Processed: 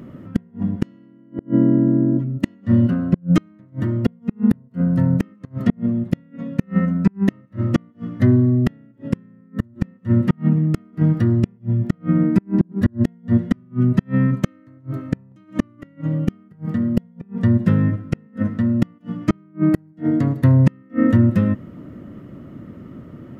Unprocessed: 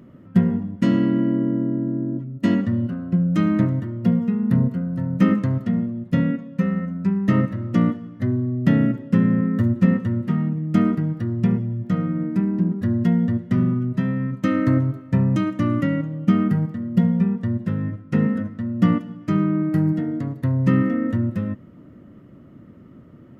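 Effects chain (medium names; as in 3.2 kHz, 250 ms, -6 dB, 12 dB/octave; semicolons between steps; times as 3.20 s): inverted gate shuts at -12 dBFS, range -37 dB; trim +8 dB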